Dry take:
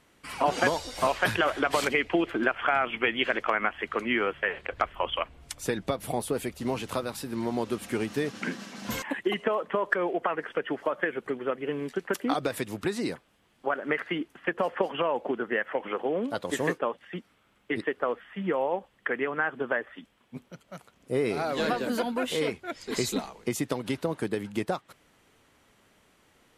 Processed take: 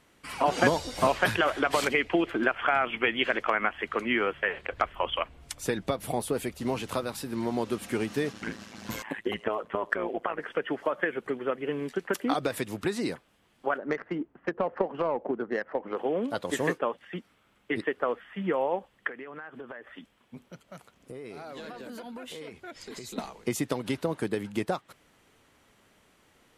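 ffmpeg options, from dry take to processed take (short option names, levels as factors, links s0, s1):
-filter_complex "[0:a]asettb=1/sr,asplit=3[s0][s1][s2];[s0]atrim=end=0.594[s3];[s1]atrim=start=0.59:end=1.25,asetpts=PTS-STARTPTS,afade=t=in:d=0.004:c=qsin,afade=t=out:st=0.656:d=0.004:c=qsin,equalizer=f=160:w=0.47:g=6.5[s4];[s2]atrim=start=1.246[s5];[s3][s4]acrossfade=d=0.004:c1=hsin:c2=qsin[s6];[s6][s5]acrossfade=d=0.004:c1=qsin:c2=hsin,asettb=1/sr,asplit=3[s7][s8][s9];[s7]atrim=end=8.334[s10];[s8]atrim=start=8.33:end=10.4,asetpts=PTS-STARTPTS,afade=t=in:d=0.004:c=qsin,afade=t=out:st=2.066:d=0.004:c=qsin,tremolo=f=110:d=0.788[s11];[s9]atrim=start=10.396[s12];[s10][s11]acrossfade=d=0.004:c1=hsin:c2=qsin[s13];[s13][s12]acrossfade=d=0.004:c1=qsin:c2=hsin,asplit=3[s14][s15][s16];[s14]afade=t=out:st=13.77:d=0.02[s17];[s15]adynamicsmooth=sensitivity=0.5:basefreq=1000,afade=t=in:st=13.77:d=0.02,afade=t=out:st=15.95:d=0.02[s18];[s16]afade=t=in:st=15.95:d=0.02[s19];[s17][s18][s19]amix=inputs=3:normalize=0,asettb=1/sr,asplit=3[s20][s21][s22];[s20]atrim=end=19.084[s23];[s21]atrim=start=19.08:end=23.18,asetpts=PTS-STARTPTS,afade=t=in:d=0.004:c=qsin,afade=t=out:st=4.096:d=0.004:c=qsin,acompressor=threshold=0.0126:ratio=8:attack=3.2:release=140:knee=1:detection=peak[s24];[s22]atrim=start=23.176[s25];[s23][s24]acrossfade=d=0.004:c1=hsin:c2=qsin[s26];[s26][s25]acrossfade=d=0.004:c1=qsin:c2=hsin"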